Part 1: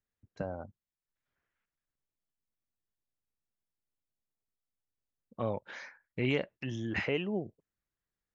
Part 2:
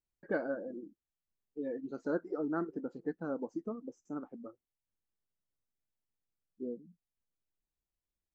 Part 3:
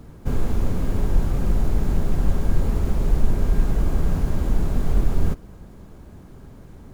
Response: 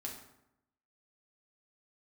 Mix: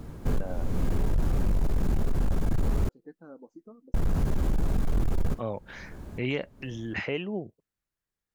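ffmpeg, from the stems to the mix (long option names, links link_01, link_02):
-filter_complex "[0:a]volume=1dB,asplit=2[link_01][link_02];[1:a]volume=-10dB[link_03];[2:a]volume=1.5dB,asplit=3[link_04][link_05][link_06];[link_04]atrim=end=2.89,asetpts=PTS-STARTPTS,afade=type=out:start_time=2.886:duration=0.004:curve=hsin[link_07];[link_05]atrim=start=2.89:end=3.94,asetpts=PTS-STARTPTS,volume=0[link_08];[link_06]atrim=start=3.94,asetpts=PTS-STARTPTS,afade=type=in:duration=0.004:curve=hsin[link_09];[link_07][link_08][link_09]concat=n=3:v=0:a=1[link_10];[link_02]apad=whole_len=305962[link_11];[link_10][link_11]sidechaincompress=threshold=-43dB:ratio=16:attack=16:release=353[link_12];[link_01][link_03][link_12]amix=inputs=3:normalize=0,asoftclip=type=hard:threshold=-15.5dB,acompressor=threshold=-21dB:ratio=6"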